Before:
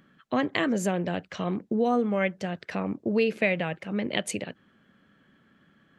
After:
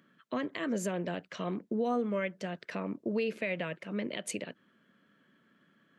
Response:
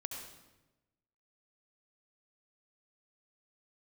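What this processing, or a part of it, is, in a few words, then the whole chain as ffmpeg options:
PA system with an anti-feedback notch: -af "highpass=170,asuperstop=centerf=790:order=4:qfactor=7.8,alimiter=limit=-18dB:level=0:latency=1:release=104,volume=-4.5dB"

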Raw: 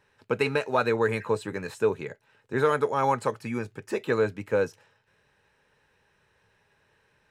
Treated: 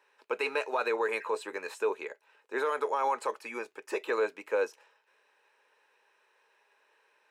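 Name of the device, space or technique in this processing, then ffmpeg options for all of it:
laptop speaker: -af "highpass=frequency=370:width=0.5412,highpass=frequency=370:width=1.3066,equalizer=frequency=1000:width_type=o:width=0.47:gain=5,equalizer=frequency=2500:width_type=o:width=0.26:gain=4.5,alimiter=limit=-17.5dB:level=0:latency=1:release=27,volume=-2.5dB"

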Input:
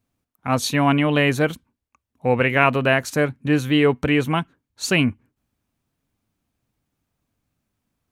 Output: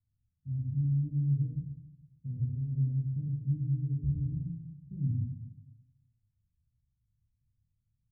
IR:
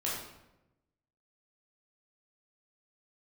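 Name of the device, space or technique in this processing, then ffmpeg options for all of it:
club heard from the street: -filter_complex "[0:a]alimiter=limit=-13dB:level=0:latency=1:release=84,lowpass=frequency=130:width=0.5412,lowpass=frequency=130:width=1.3066[link_01];[1:a]atrim=start_sample=2205[link_02];[link_01][link_02]afir=irnorm=-1:irlink=0,volume=-3dB"

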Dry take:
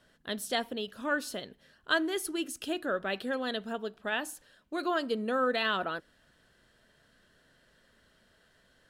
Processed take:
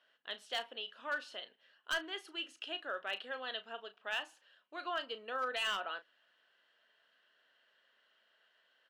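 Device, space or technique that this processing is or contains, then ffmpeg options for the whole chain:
megaphone: -filter_complex "[0:a]highpass=690,lowpass=3600,equalizer=frequency=2900:width_type=o:width=0.28:gain=9,asoftclip=type=hard:threshold=-23.5dB,asplit=2[link_01][link_02];[link_02]adelay=35,volume=-12.5dB[link_03];[link_01][link_03]amix=inputs=2:normalize=0,volume=-5.5dB"

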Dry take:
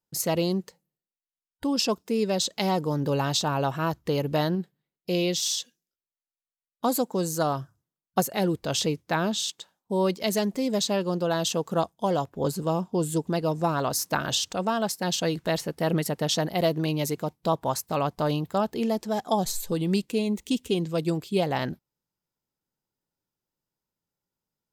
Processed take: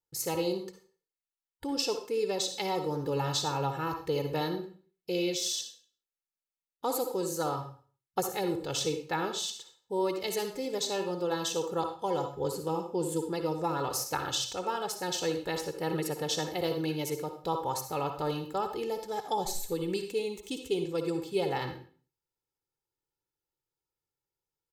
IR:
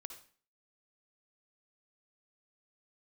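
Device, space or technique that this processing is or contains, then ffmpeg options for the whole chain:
microphone above a desk: -filter_complex "[0:a]aecho=1:1:2.3:0.74[link_01];[1:a]atrim=start_sample=2205[link_02];[link_01][link_02]afir=irnorm=-1:irlink=0,volume=-2dB"

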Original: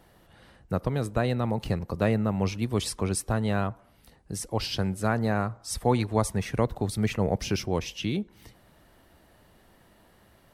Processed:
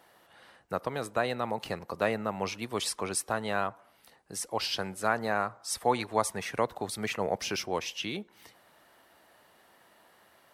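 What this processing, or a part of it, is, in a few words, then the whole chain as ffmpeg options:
filter by subtraction: -filter_complex "[0:a]asplit=2[link_01][link_02];[link_02]lowpass=980,volume=-1[link_03];[link_01][link_03]amix=inputs=2:normalize=0"

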